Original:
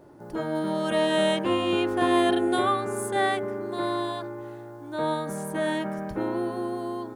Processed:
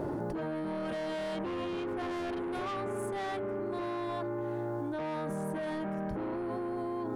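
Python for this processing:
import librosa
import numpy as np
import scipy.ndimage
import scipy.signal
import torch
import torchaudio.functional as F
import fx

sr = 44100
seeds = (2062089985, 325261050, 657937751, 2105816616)

y = fx.high_shelf(x, sr, hz=2500.0, db=-11.0)
y = 10.0 ** (-28.0 / 20.0) * np.tanh(y / 10.0 ** (-28.0 / 20.0))
y = fx.env_flatten(y, sr, amount_pct=100)
y = y * 10.0 ** (-6.0 / 20.0)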